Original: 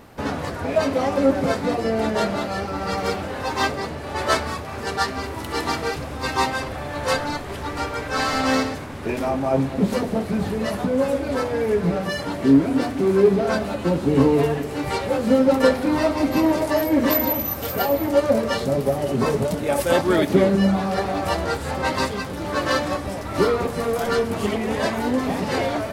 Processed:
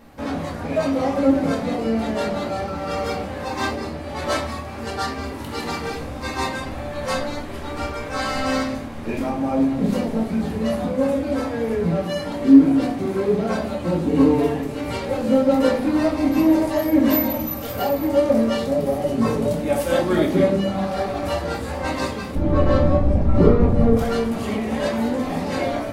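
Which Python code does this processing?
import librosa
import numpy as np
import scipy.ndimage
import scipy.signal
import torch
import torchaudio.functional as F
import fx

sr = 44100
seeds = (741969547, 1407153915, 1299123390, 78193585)

y = fx.tilt_eq(x, sr, slope=-4.5, at=(22.35, 23.97))
y = fx.room_shoebox(y, sr, seeds[0], volume_m3=300.0, walls='furnished', distance_m=2.2)
y = y * librosa.db_to_amplitude(-6.0)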